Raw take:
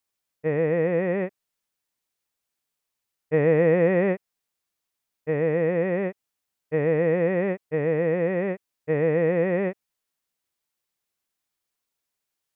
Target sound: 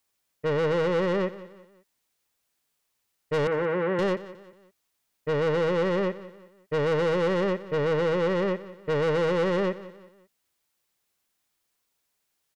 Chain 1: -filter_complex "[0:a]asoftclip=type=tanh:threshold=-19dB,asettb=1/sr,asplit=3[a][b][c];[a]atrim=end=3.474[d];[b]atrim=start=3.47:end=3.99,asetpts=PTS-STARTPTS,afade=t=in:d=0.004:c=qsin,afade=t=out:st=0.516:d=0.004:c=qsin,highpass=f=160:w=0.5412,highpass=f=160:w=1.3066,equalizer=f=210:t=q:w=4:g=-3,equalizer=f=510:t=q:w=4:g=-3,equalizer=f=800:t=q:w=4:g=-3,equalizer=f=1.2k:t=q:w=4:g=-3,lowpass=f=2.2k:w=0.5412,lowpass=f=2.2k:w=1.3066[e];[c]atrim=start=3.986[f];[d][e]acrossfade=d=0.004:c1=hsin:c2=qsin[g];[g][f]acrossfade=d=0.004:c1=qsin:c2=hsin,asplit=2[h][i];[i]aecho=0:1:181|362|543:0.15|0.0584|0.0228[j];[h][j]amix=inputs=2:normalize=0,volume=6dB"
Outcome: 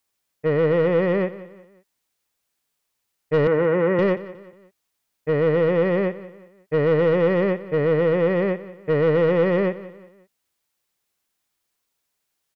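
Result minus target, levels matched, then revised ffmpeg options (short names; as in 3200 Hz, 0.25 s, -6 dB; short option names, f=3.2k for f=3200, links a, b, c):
soft clip: distortion -7 dB
-filter_complex "[0:a]asoftclip=type=tanh:threshold=-28.5dB,asettb=1/sr,asplit=3[a][b][c];[a]atrim=end=3.474[d];[b]atrim=start=3.47:end=3.99,asetpts=PTS-STARTPTS,afade=t=in:d=0.004:c=qsin,afade=t=out:st=0.516:d=0.004:c=qsin,highpass=f=160:w=0.5412,highpass=f=160:w=1.3066,equalizer=f=210:t=q:w=4:g=-3,equalizer=f=510:t=q:w=4:g=-3,equalizer=f=800:t=q:w=4:g=-3,equalizer=f=1.2k:t=q:w=4:g=-3,lowpass=f=2.2k:w=0.5412,lowpass=f=2.2k:w=1.3066[e];[c]atrim=start=3.986[f];[d][e]acrossfade=d=0.004:c1=hsin:c2=qsin[g];[g][f]acrossfade=d=0.004:c1=qsin:c2=hsin,asplit=2[h][i];[i]aecho=0:1:181|362|543:0.15|0.0584|0.0228[j];[h][j]amix=inputs=2:normalize=0,volume=6dB"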